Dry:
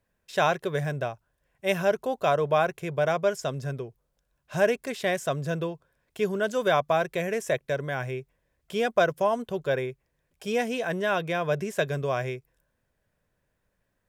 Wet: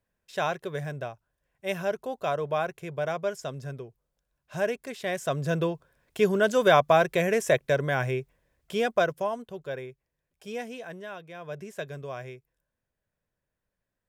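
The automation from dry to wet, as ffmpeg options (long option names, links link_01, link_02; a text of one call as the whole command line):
ffmpeg -i in.wav -af "volume=11.5dB,afade=type=in:start_time=5.05:duration=0.66:silence=0.354813,afade=type=out:start_time=8.19:duration=1.27:silence=0.237137,afade=type=out:start_time=10.58:duration=0.69:silence=0.375837,afade=type=in:start_time=11.27:duration=0.37:silence=0.421697" out.wav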